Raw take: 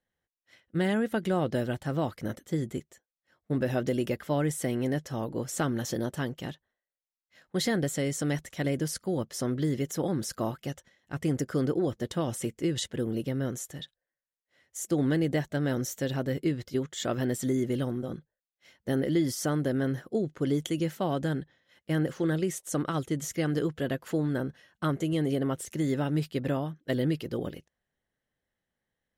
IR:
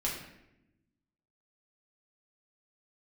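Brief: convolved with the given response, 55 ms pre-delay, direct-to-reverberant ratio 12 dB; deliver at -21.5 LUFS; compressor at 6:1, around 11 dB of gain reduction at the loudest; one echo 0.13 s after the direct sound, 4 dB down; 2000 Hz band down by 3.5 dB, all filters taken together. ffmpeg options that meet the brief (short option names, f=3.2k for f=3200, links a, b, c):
-filter_complex "[0:a]equalizer=f=2k:t=o:g=-4.5,acompressor=threshold=-35dB:ratio=6,aecho=1:1:130:0.631,asplit=2[a][b];[1:a]atrim=start_sample=2205,adelay=55[c];[b][c]afir=irnorm=-1:irlink=0,volume=-17dB[d];[a][d]amix=inputs=2:normalize=0,volume=16.5dB"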